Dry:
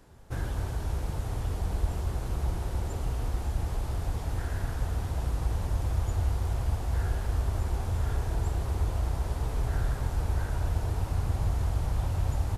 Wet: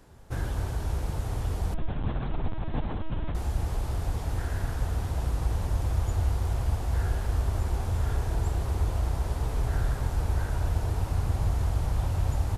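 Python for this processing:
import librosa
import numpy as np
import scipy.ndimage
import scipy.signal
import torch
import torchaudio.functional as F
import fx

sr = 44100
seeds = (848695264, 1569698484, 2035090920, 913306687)

y = fx.lpc_vocoder(x, sr, seeds[0], excitation='pitch_kept', order=10, at=(1.74, 3.35))
y = F.gain(torch.from_numpy(y), 1.5).numpy()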